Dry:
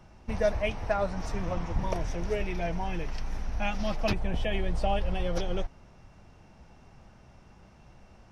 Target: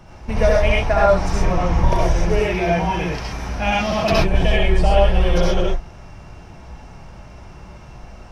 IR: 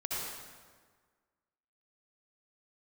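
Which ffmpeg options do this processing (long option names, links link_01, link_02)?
-filter_complex "[0:a]asettb=1/sr,asplit=3[link_01][link_02][link_03];[link_01]atrim=end=2.294[link_04];[link_02]atrim=start=2.29:end=4.12,asetpts=PTS-STARTPTS,afade=type=in:duration=0.004:curve=qsin,afade=type=out:start_time=1.826:duration=0.004:curve=qsin,highpass=80[link_05];[link_03]atrim=start=4.116[link_06];[link_04][link_05]acrossfade=duration=0.004:curve1=hsin:curve2=qsin[link_07];[link_07][link_06]acrossfade=duration=0.004:curve1=qsin:curve2=hsin,asplit=2[link_08][link_09];[link_09]asoftclip=type=tanh:threshold=-28.5dB,volume=-7dB[link_10];[link_08][link_10]amix=inputs=2:normalize=0[link_11];[1:a]atrim=start_sample=2205,atrim=end_sample=6174[link_12];[link_11][link_12]afir=irnorm=-1:irlink=0,volume=9dB"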